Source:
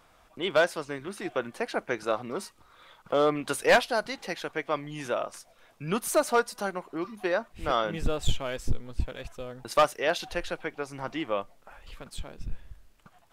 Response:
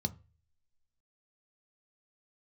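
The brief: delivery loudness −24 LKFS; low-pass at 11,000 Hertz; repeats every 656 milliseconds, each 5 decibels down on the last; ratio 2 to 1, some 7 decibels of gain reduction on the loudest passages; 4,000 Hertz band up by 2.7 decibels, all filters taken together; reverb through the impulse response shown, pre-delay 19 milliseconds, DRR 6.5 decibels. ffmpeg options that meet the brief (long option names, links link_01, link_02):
-filter_complex "[0:a]lowpass=11000,equalizer=frequency=4000:width_type=o:gain=3.5,acompressor=threshold=-29dB:ratio=2,aecho=1:1:656|1312|1968|2624|3280|3936|4592:0.562|0.315|0.176|0.0988|0.0553|0.031|0.0173,asplit=2[link_01][link_02];[1:a]atrim=start_sample=2205,adelay=19[link_03];[link_02][link_03]afir=irnorm=-1:irlink=0,volume=-8dB[link_04];[link_01][link_04]amix=inputs=2:normalize=0,volume=7dB"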